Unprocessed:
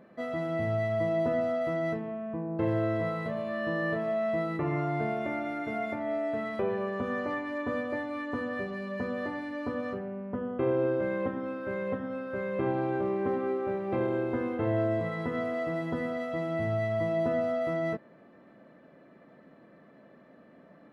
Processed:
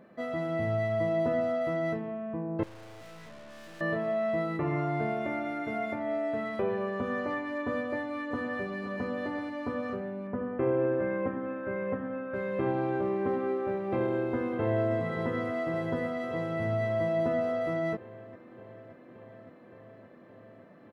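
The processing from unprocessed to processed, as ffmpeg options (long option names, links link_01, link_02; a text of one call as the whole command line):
ffmpeg -i in.wav -filter_complex "[0:a]asettb=1/sr,asplit=3[link_01][link_02][link_03];[link_01]atrim=end=2.634[link_04];[link_02]atrim=start=2.63:end=3.81,asetpts=PTS-STARTPTS,afade=type=in:duration=0.004:curve=qsin,afade=type=out:start_time=1.176:duration=0.004:curve=qsin,aeval=exprs='(tanh(251*val(0)+0.65)-tanh(0.65))/251':channel_layout=same[link_05];[link_03]atrim=start=3.806[link_06];[link_04][link_05]acrossfade=duration=0.004:curve1=hsin:curve2=qsin[link_07];[link_07][link_06]acrossfade=duration=0.004:curve1=qsin:curve2=hsin,asplit=2[link_08][link_09];[link_09]afade=type=in:start_time=7.78:duration=0.01,afade=type=out:start_time=8.44:duration=0.01,aecho=0:1:520|1040|1560|2080|2600|3120|3640|4160|4680|5200|5720|6240:0.316228|0.252982|0.202386|0.161909|0.129527|0.103622|0.0828972|0.0663178|0.0530542|0.0424434|0.0339547|0.0271638[link_10];[link_08][link_10]amix=inputs=2:normalize=0,asettb=1/sr,asplit=3[link_11][link_12][link_13];[link_11]atrim=end=10.274[link_14];[link_12]atrim=start=10.27:end=12.34,asetpts=PTS-STARTPTS,afade=type=in:duration=0.004:curve=qsin,afade=type=out:start_time=2.066:duration=0.004:curve=qsin,lowpass=frequency=2600:width=0.5412,lowpass=frequency=2600:width=1.3066[link_15];[link_13]atrim=start=12.336[link_16];[link_14][link_15]acrossfade=duration=0.004:curve1=hsin:curve2=qsin[link_17];[link_17][link_16]acrossfade=duration=0.004:curve1=qsin:curve2=hsin,asplit=2[link_18][link_19];[link_19]afade=type=in:start_time=13.95:duration=0.01,afade=type=out:start_time=14.93:duration=0.01,aecho=0:1:570|1140|1710|2280|2850|3420|3990|4560|5130|5700|6270|6840:0.281838|0.225471|0.180377|0.144301|0.115441|0.0923528|0.0738822|0.0591058|0.0472846|0.0378277|0.0302622|0.0242097[link_20];[link_18][link_20]amix=inputs=2:normalize=0" out.wav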